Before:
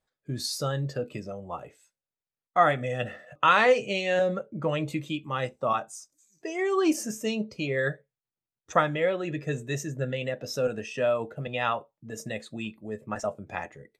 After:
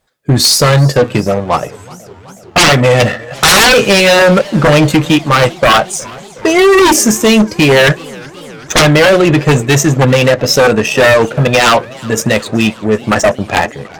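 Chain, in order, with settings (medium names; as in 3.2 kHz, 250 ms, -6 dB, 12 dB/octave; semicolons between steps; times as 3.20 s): sine folder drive 18 dB, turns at -6.5 dBFS; Chebyshev shaper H 7 -22 dB, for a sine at -5.5 dBFS; modulated delay 372 ms, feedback 74%, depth 155 cents, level -23 dB; trim +3.5 dB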